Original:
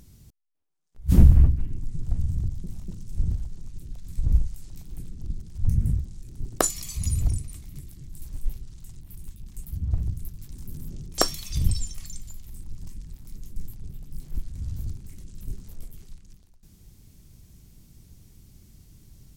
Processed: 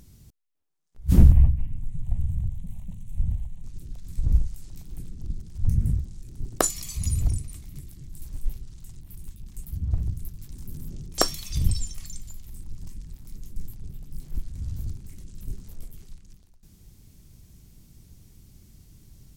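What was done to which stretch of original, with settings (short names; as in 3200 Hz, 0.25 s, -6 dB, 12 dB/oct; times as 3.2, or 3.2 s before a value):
1.32–3.64 fixed phaser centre 1400 Hz, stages 6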